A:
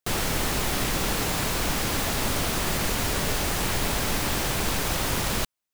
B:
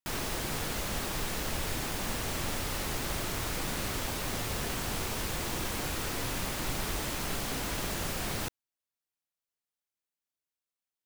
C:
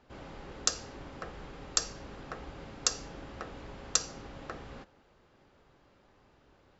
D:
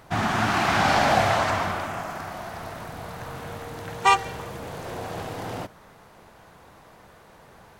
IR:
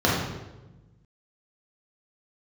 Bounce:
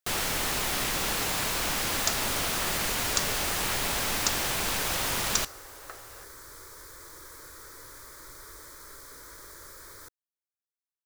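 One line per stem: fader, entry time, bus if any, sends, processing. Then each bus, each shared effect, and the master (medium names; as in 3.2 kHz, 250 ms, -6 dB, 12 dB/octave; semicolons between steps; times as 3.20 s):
-0.5 dB, 0.00 s, no send, none
-8.0 dB, 1.60 s, no send, static phaser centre 750 Hz, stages 6
-0.5 dB, 1.40 s, no send, high-pass 430 Hz 24 dB/octave
mute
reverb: none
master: bass shelf 490 Hz -9 dB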